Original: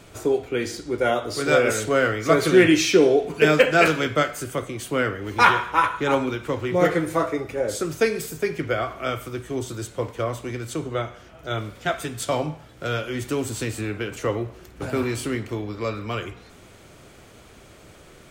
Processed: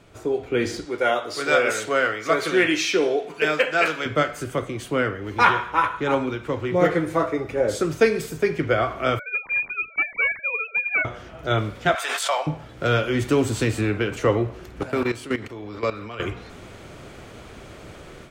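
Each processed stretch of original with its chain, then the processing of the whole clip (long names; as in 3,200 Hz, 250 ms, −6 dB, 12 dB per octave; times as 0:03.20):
0:00.85–0:04.06: high-pass filter 160 Hz 6 dB per octave + low-shelf EQ 470 Hz −11 dB
0:09.19–0:11.05: three sine waves on the formant tracks + gain into a clipping stage and back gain 23.5 dB + voice inversion scrambler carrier 2,800 Hz
0:11.95–0:12.47: high-pass filter 680 Hz 24 dB per octave + background raised ahead of every attack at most 22 dB per second
0:14.83–0:16.20: low-shelf EQ 250 Hz −8 dB + output level in coarse steps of 14 dB
whole clip: high-shelf EQ 6,100 Hz −10.5 dB; automatic gain control; level −4.5 dB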